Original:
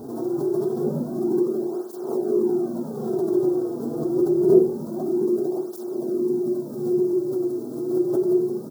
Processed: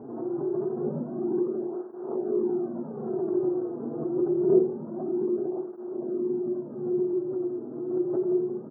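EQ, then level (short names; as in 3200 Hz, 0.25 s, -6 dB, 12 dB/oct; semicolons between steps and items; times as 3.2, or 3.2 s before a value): HPF 91 Hz; elliptic low-pass 2200 Hz, stop band 40 dB; -4.5 dB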